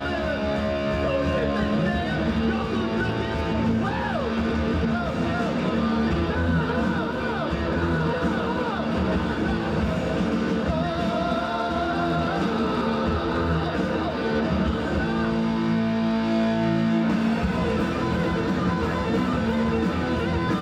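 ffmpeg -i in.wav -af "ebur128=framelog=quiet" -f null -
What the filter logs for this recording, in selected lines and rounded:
Integrated loudness:
  I:         -24.3 LUFS
  Threshold: -34.3 LUFS
Loudness range:
  LRA:         1.5 LU
  Threshold: -44.3 LUFS
  LRA low:   -24.7 LUFS
  LRA high:  -23.3 LUFS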